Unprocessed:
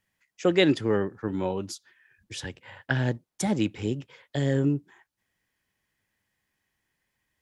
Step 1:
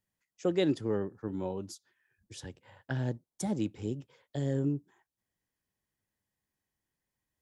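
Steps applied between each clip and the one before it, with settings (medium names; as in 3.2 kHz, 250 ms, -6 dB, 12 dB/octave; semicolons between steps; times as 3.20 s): peaking EQ 2.2 kHz -9 dB 1.8 oct; trim -6 dB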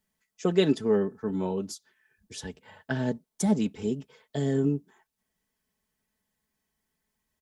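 comb 4.6 ms, depth 68%; trim +5 dB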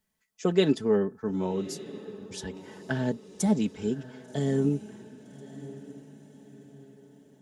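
echo that smears into a reverb 1141 ms, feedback 43%, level -16 dB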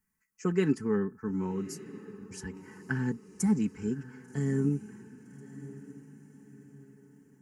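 static phaser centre 1.5 kHz, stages 4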